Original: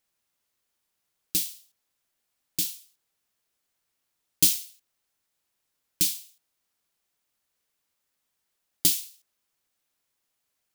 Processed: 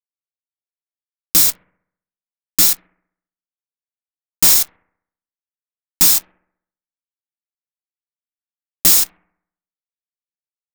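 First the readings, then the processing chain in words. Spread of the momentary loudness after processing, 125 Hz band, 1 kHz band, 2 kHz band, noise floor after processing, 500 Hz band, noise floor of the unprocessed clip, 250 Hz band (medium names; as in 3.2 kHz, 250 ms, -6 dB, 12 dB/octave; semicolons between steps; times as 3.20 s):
11 LU, +8.0 dB, no reading, +15.0 dB, under -85 dBFS, +14.5 dB, -80 dBFS, +8.5 dB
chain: peaking EQ 11 kHz -9 dB 0.22 oct; de-hum 326.2 Hz, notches 16; in parallel at +3 dB: level held to a coarse grid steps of 21 dB; on the sum: static phaser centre 550 Hz, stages 8; comb of notches 1.5 kHz; fuzz box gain 37 dB, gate -39 dBFS; on a send: bucket-brigade echo 66 ms, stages 1024, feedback 52%, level -21 dB; on the sum: trim +6 dB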